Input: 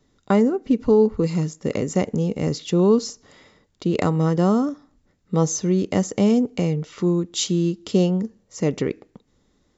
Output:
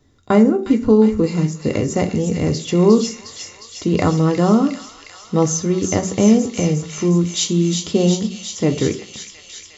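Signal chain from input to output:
parametric band 87 Hz +10.5 dB 0.55 octaves
delay with a high-pass on its return 358 ms, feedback 77%, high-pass 2,400 Hz, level −4.5 dB
on a send at −5 dB: convolution reverb RT60 0.40 s, pre-delay 3 ms
on the sum: level +3 dB

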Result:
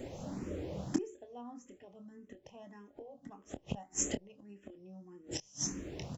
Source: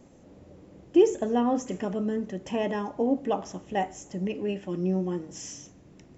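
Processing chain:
high-shelf EQ 4,500 Hz +4 dB
gate with flip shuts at −28 dBFS, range −34 dB
double-tracking delay 25 ms −9.5 dB
frequency shifter mixed with the dry sound +1.7 Hz
level +12.5 dB

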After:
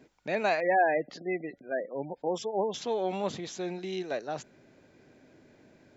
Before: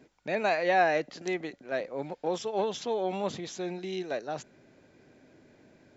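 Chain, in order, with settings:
0:00.60–0:02.74: gate on every frequency bin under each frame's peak −20 dB strong

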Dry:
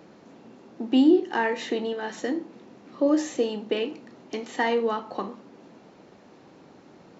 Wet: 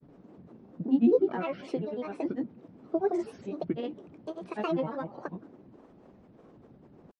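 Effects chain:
spectral tilt −4 dB per octave
granular cloud, pitch spread up and down by 7 semitones
level −9 dB

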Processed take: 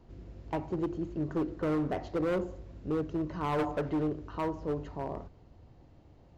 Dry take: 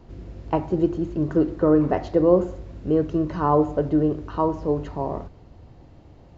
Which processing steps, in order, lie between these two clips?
0:03.58–0:04.03: parametric band 700 Hz → 3,000 Hz +11 dB 1.9 octaves
gain into a clipping stage and back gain 17.5 dB
level −9 dB

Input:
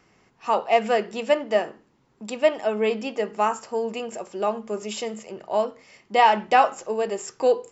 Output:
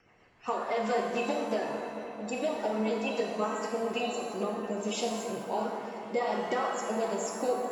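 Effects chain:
spectral magnitudes quantised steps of 30 dB
brickwall limiter −14.5 dBFS, peak gain reduction 9 dB
rotating-speaker cabinet horn 7.5 Hz, later 0.6 Hz, at 0:03.21
downward compressor, threshold −27 dBFS, peak gain reduction 7 dB
delay with a low-pass on its return 223 ms, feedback 78%, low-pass 2,000 Hz, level −10 dB
reverb with rising layers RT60 1.1 s, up +7 semitones, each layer −8 dB, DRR 1 dB
level −1.5 dB

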